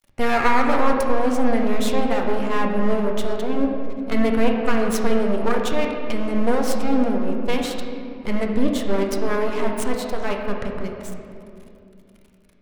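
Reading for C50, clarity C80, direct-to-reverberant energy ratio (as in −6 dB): 3.0 dB, 4.0 dB, 1.0 dB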